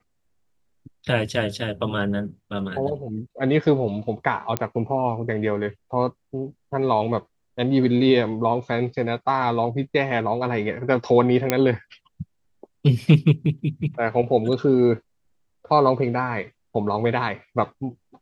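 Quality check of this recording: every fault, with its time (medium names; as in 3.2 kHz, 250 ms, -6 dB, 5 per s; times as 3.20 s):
4.57 s: pop -7 dBFS
11.50 s: pop -4 dBFS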